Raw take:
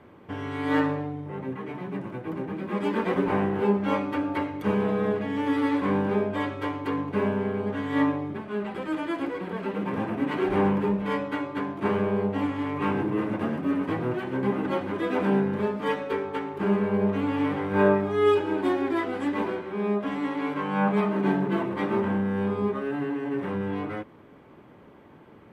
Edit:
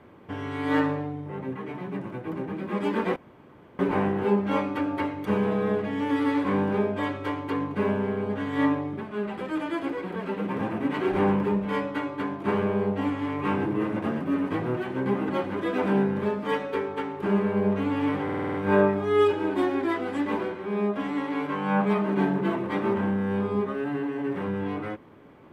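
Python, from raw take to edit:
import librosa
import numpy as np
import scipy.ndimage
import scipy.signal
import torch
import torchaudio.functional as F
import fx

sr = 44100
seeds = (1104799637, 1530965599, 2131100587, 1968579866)

y = fx.edit(x, sr, fx.insert_room_tone(at_s=3.16, length_s=0.63),
    fx.stutter(start_s=17.61, slice_s=0.05, count=7), tone=tone)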